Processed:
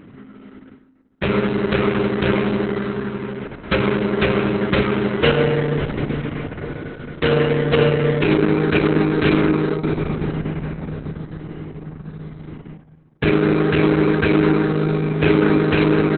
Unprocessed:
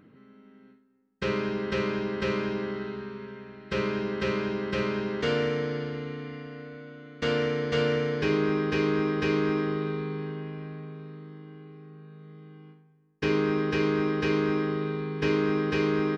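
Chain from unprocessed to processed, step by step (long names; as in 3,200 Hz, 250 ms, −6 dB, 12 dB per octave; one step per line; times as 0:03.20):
parametric band 100 Hz +6 dB 1.6 octaves
in parallel at −2 dB: downward compressor 8 to 1, threshold −33 dBFS, peak gain reduction 13.5 dB
on the sum: level +7.5 dB
Opus 6 kbit/s 48,000 Hz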